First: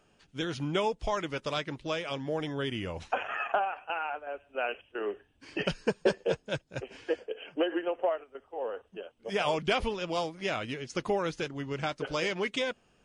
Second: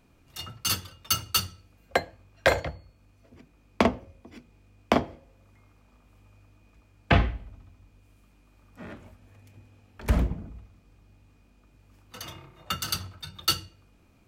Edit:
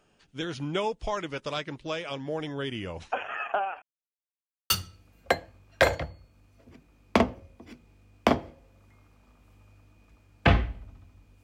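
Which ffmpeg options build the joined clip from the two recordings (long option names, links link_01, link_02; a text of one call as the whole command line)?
ffmpeg -i cue0.wav -i cue1.wav -filter_complex "[0:a]apad=whole_dur=11.43,atrim=end=11.43,asplit=2[link_01][link_02];[link_01]atrim=end=3.82,asetpts=PTS-STARTPTS,afade=type=out:start_time=3.816:duration=0.004:curve=hsin[link_03];[link_02]atrim=start=3.82:end=4.7,asetpts=PTS-STARTPTS,volume=0[link_04];[1:a]atrim=start=1.35:end=8.08,asetpts=PTS-STARTPTS,afade=type=in:duration=0.004:curve=hsin[link_05];[link_03][link_04][link_05]concat=n=3:v=0:a=1" out.wav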